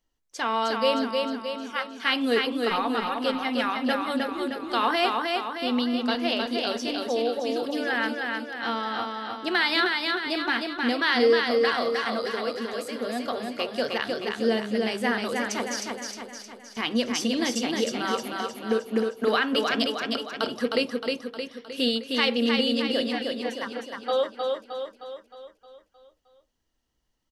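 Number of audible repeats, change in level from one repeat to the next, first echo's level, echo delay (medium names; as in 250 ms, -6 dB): 6, -5.5 dB, -3.5 dB, 310 ms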